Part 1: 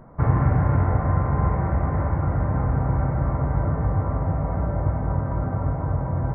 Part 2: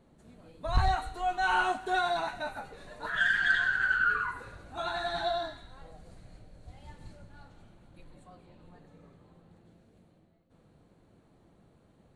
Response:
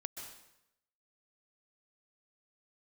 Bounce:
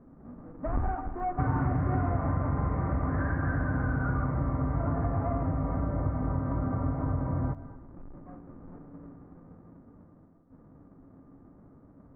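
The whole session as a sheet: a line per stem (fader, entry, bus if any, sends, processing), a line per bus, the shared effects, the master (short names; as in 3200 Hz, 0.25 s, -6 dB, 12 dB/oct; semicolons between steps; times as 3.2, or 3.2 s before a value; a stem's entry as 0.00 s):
0.0 dB, 1.20 s, send -10.5 dB, notch 860 Hz, Q 12
0.0 dB, 0.00 s, send -10 dB, half-waves squared off; Bessel low-pass 930 Hz, order 8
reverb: on, RT60 0.85 s, pre-delay 0.118 s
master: small resonant body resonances 270/1200 Hz, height 12 dB, ringing for 85 ms; compressor 2.5:1, threshold -30 dBFS, peak gain reduction 13 dB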